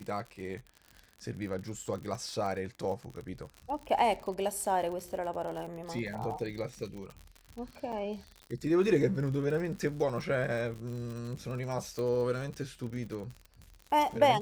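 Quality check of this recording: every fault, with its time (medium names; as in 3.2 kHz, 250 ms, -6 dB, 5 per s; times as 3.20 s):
crackle 60 per s -38 dBFS
7.92–7.93 s: dropout 6.4 ms
11.99 s: pop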